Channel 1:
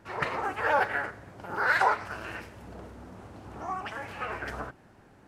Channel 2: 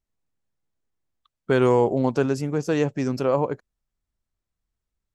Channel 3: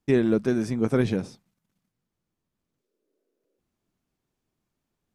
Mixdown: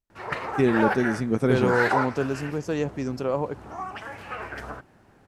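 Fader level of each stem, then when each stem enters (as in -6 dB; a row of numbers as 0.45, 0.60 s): 0.0, -4.5, 0.0 dB; 0.10, 0.00, 0.50 s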